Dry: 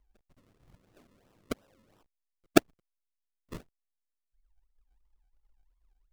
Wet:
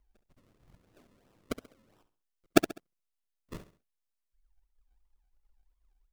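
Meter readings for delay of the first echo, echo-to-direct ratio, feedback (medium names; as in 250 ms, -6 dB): 67 ms, -12.5 dB, 35%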